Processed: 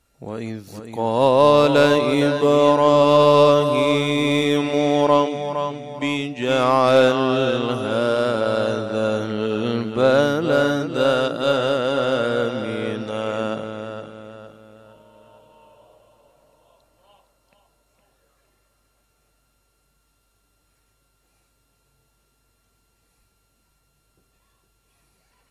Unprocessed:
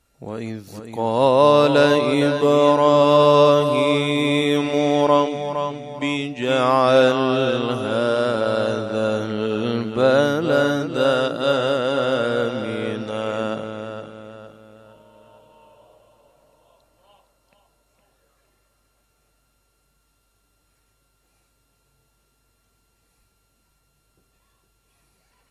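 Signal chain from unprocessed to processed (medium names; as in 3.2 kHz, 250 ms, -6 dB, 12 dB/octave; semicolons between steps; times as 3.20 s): tracing distortion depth 0.03 ms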